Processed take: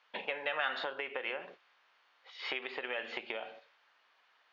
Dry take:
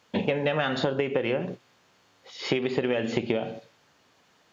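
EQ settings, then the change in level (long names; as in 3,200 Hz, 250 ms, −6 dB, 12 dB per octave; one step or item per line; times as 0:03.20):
high-pass filter 1,100 Hz 12 dB per octave
high-frequency loss of the air 280 metres
0.0 dB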